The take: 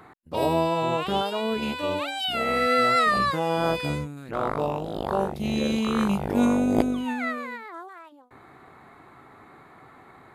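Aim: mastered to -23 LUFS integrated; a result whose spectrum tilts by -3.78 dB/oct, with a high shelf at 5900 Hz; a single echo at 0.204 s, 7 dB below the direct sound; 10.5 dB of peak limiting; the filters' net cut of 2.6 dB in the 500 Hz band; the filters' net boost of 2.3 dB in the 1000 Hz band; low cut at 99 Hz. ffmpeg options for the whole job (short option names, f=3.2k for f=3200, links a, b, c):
-af "highpass=99,equalizer=f=500:t=o:g=-4.5,equalizer=f=1k:t=o:g=4.5,highshelf=f=5.9k:g=-8.5,alimiter=limit=-16dB:level=0:latency=1,aecho=1:1:204:0.447,volume=2.5dB"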